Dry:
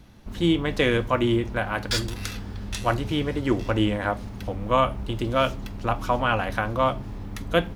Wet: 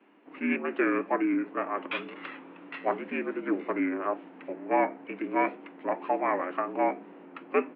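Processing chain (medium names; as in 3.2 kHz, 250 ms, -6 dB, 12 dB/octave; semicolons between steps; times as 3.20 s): vibrato 2 Hz 84 cents; formant shift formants -6 st; mistuned SSB +77 Hz 180–2700 Hz; trim -3.5 dB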